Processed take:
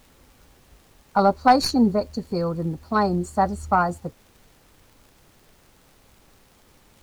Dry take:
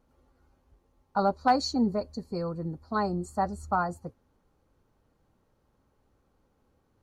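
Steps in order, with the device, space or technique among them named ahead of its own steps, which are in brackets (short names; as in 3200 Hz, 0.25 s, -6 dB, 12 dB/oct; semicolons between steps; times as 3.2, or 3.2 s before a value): record under a worn stylus (tracing distortion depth 0.032 ms; crackle; pink noise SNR 32 dB); gain +7.5 dB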